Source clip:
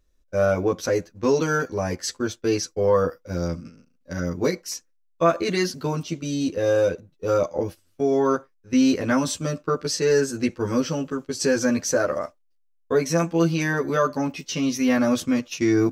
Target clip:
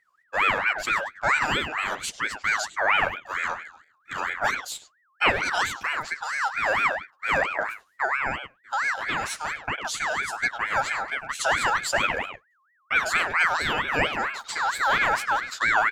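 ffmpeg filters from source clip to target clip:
ffmpeg -i in.wav -filter_complex "[0:a]asettb=1/sr,asplit=3[link_01][link_02][link_03];[link_01]atrim=end=8.054[link_04];[link_02]atrim=start=8.05:end=10.28,asetpts=PTS-STARTPTS,afade=type=in:duration=0.004:curve=qsin,afade=type=out:start_time=2.226:duration=0.004:curve=qsin,acompressor=threshold=-24dB:ratio=2.5[link_05];[link_03]atrim=start=10.276[link_06];[link_04][link_05]acrossfade=duration=0.004:curve1=hsin:curve2=qsin[link_07];[link_07][link_06]acrossfade=duration=0.004:curve1=qsin:curve2=hsin,asplit=2[link_08][link_09];[link_09]adelay=100,highpass=300,lowpass=3400,asoftclip=type=hard:threshold=-16dB,volume=-7dB[link_10];[link_08][link_10]amix=inputs=2:normalize=0,aeval=exprs='val(0)*sin(2*PI*1500*n/s+1500*0.3/4.4*sin(2*PI*4.4*n/s))':channel_layout=same" out.wav

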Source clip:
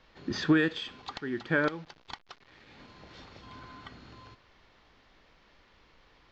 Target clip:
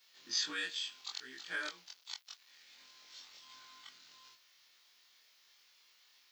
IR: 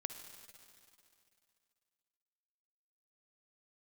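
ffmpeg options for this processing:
-af "afftfilt=real='re':imag='-im':win_size=2048:overlap=0.75,aderivative,crystalizer=i=2.5:c=0,volume=6dB"

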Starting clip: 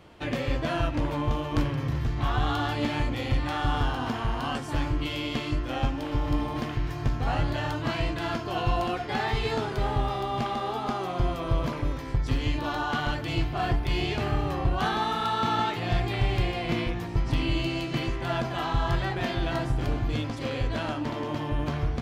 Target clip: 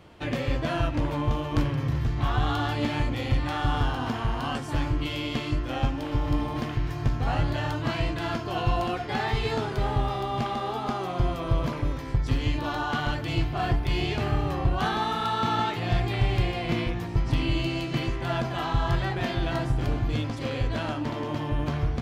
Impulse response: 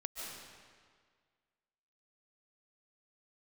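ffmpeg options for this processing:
-af "equalizer=frequency=110:width=0.95:gain=2.5"

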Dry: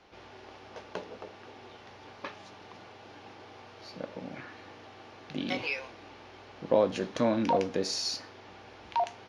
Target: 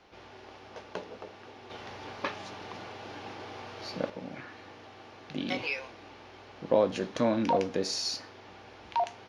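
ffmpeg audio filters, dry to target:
ffmpeg -i in.wav -filter_complex "[0:a]asettb=1/sr,asplit=3[link_01][link_02][link_03];[link_01]atrim=end=1.704[link_04];[link_02]atrim=start=1.7:end=4.1,asetpts=PTS-STARTPTS,afade=type=in:duration=0.004:curve=qsin,afade=type=out:start_time=2.396:duration=0.004:curve=qsin,acontrast=74[link_05];[link_03]atrim=start=4.096[link_06];[link_04][link_05]acrossfade=duration=0.004:curve1=hsin:curve2=qsin[link_07];[link_07][link_06]acrossfade=duration=0.004:curve1=qsin:curve2=hsin" out.wav

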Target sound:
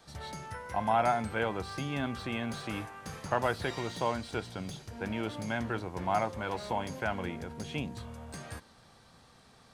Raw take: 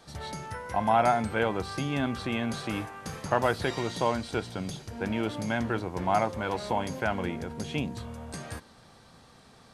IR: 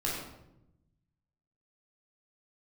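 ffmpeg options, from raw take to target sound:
-filter_complex "[0:a]equalizer=frequency=300:width_type=o:width=2.3:gain=-2.5,acrossover=split=770|3300[link_01][link_02][link_03];[link_03]asoftclip=type=tanh:threshold=-39.5dB[link_04];[link_01][link_02][link_04]amix=inputs=3:normalize=0,volume=-3dB"

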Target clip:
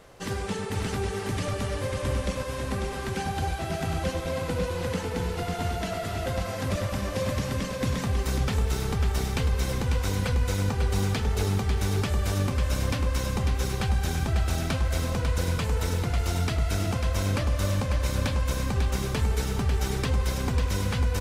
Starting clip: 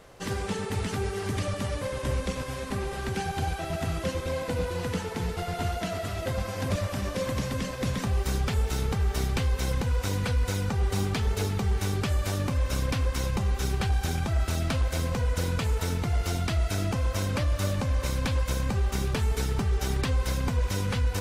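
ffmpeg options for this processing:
ffmpeg -i in.wav -af "aecho=1:1:546:0.531" out.wav

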